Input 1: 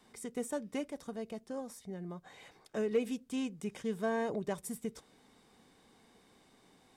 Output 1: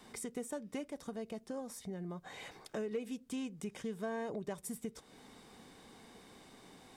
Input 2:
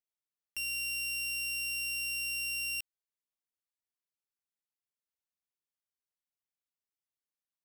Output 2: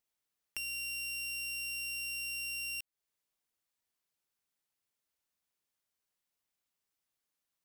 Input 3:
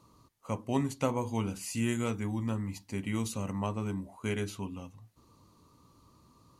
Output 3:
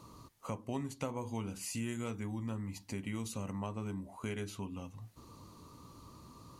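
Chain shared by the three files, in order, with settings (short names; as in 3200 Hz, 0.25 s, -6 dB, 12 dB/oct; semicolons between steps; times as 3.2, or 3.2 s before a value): compressor 2.5:1, threshold -50 dBFS; gain +7 dB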